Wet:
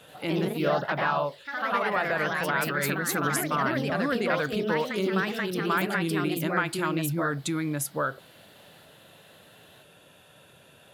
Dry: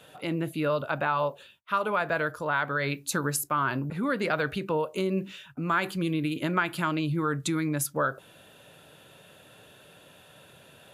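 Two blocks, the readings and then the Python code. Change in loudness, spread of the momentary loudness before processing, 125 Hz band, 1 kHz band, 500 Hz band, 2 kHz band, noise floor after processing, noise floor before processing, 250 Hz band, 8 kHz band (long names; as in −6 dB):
+1.5 dB, 4 LU, 0.0 dB, +1.0 dB, +2.0 dB, +2.5 dB, −55 dBFS, −55 dBFS, +1.0 dB, +0.5 dB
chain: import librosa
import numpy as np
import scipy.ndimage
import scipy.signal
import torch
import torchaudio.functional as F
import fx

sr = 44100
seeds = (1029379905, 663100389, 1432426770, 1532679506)

p1 = fx.rider(x, sr, range_db=10, speed_s=0.5)
p2 = x + (p1 * 10.0 ** (0.0 / 20.0))
p3 = fx.echo_pitch(p2, sr, ms=86, semitones=2, count=3, db_per_echo=-3.0)
y = p3 * 10.0 ** (-7.0 / 20.0)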